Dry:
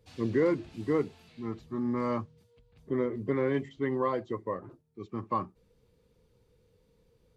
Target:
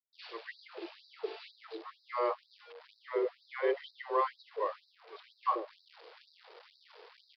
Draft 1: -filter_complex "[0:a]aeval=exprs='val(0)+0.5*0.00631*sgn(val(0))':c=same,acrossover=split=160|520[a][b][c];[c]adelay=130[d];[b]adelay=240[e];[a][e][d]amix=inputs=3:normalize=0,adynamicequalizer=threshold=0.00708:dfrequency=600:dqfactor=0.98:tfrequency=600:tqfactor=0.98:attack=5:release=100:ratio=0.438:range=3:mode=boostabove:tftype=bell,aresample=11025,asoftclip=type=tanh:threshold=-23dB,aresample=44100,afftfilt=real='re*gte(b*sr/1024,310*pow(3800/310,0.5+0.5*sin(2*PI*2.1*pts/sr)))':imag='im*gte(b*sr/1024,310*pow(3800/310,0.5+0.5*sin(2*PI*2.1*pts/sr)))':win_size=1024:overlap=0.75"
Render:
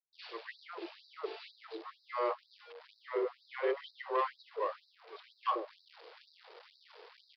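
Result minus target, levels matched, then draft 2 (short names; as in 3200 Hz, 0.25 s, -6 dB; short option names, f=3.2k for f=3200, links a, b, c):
soft clip: distortion +14 dB
-filter_complex "[0:a]aeval=exprs='val(0)+0.5*0.00631*sgn(val(0))':c=same,acrossover=split=160|520[a][b][c];[c]adelay=130[d];[b]adelay=240[e];[a][e][d]amix=inputs=3:normalize=0,adynamicequalizer=threshold=0.00708:dfrequency=600:dqfactor=0.98:tfrequency=600:tqfactor=0.98:attack=5:release=100:ratio=0.438:range=3:mode=boostabove:tftype=bell,aresample=11025,asoftclip=type=tanh:threshold=-13.5dB,aresample=44100,afftfilt=real='re*gte(b*sr/1024,310*pow(3800/310,0.5+0.5*sin(2*PI*2.1*pts/sr)))':imag='im*gte(b*sr/1024,310*pow(3800/310,0.5+0.5*sin(2*PI*2.1*pts/sr)))':win_size=1024:overlap=0.75"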